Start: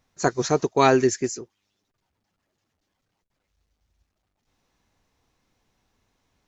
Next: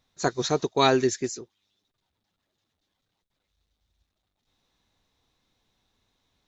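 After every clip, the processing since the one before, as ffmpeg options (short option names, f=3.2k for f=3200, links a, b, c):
-af "equalizer=f=3.7k:t=o:w=0.36:g=11.5,volume=-3.5dB"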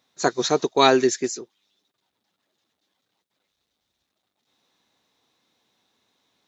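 -af "highpass=210,volume=4.5dB"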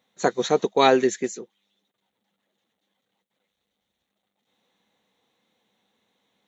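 -af "equalizer=f=200:t=o:w=0.33:g=11,equalizer=f=500:t=o:w=0.33:g=8,equalizer=f=800:t=o:w=0.33:g=4,equalizer=f=2k:t=o:w=0.33:g=5,equalizer=f=3.15k:t=o:w=0.33:g=4,equalizer=f=5k:t=o:w=0.33:g=-11,volume=-3.5dB"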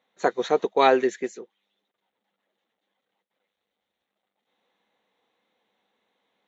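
-af "bass=f=250:g=-11,treble=f=4k:g=-12"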